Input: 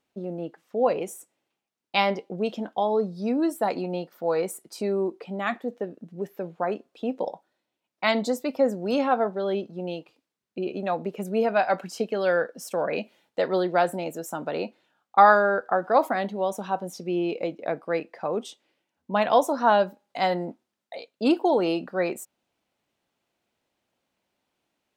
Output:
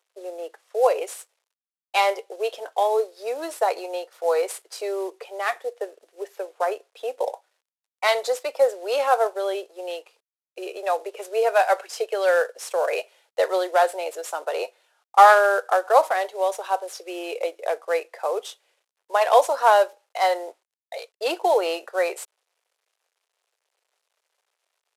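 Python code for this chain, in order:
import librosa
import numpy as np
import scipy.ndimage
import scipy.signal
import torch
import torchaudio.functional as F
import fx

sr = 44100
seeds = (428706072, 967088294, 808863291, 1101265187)

y = fx.cvsd(x, sr, bps=64000)
y = scipy.signal.sosfilt(scipy.signal.butter(8, 420.0, 'highpass', fs=sr, output='sos'), y)
y = y * librosa.db_to_amplitude(4.0)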